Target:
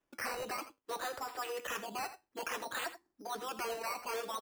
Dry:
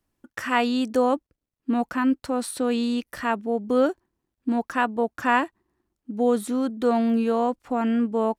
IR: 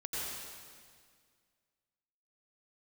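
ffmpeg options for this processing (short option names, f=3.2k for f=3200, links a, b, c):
-filter_complex "[0:a]afftfilt=real='re*lt(hypot(re,im),0.224)':imag='im*lt(hypot(re,im),0.224)':win_size=1024:overlap=0.75,atempo=1.9,acrossover=split=3700[a][b];[b]acompressor=threshold=-56dB:ratio=4:attack=1:release=60[c];[a][c]amix=inputs=2:normalize=0,highshelf=f=7.5k:g=8.5,acrossover=split=120[d][e];[e]asoftclip=type=hard:threshold=-31.5dB[f];[d][f]amix=inputs=2:normalize=0,acrossover=split=310 2800:gain=0.224 1 0.141[g][h][i];[g][h][i]amix=inputs=3:normalize=0,flanger=delay=6.8:depth=5.7:regen=-74:speed=0.33:shape=triangular,acrusher=samples=10:mix=1:aa=0.000001:lfo=1:lforange=6:lforate=0.58,asplit=2[j][k];[k]aecho=0:1:83:0.224[l];[j][l]amix=inputs=2:normalize=0,volume=4dB"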